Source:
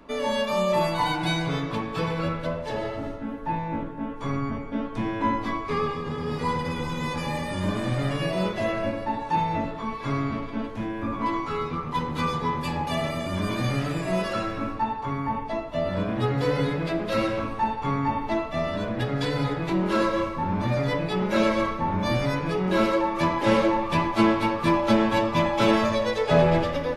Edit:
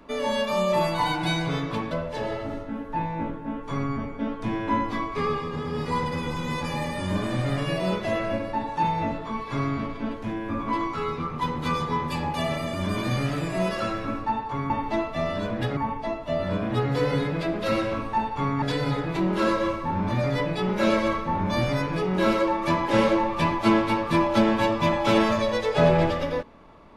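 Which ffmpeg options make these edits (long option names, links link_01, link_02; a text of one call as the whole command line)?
ffmpeg -i in.wav -filter_complex "[0:a]asplit=5[link_01][link_02][link_03][link_04][link_05];[link_01]atrim=end=1.912[link_06];[link_02]atrim=start=2.438:end=15.232[link_07];[link_03]atrim=start=18.078:end=19.152[link_08];[link_04]atrim=start=15.228:end=18.082[link_09];[link_05]atrim=start=19.148[link_10];[link_06][link_07]acrossfade=duration=0.004:curve1=hsin:curve2=hsin[link_11];[link_11][link_08]acrossfade=duration=0.004:curve1=hsin:curve2=hsin[link_12];[link_12][link_09]acrossfade=duration=0.004:curve1=hsin:curve2=hsin[link_13];[link_13][link_10]acrossfade=duration=0.004:curve1=hsin:curve2=hsin" out.wav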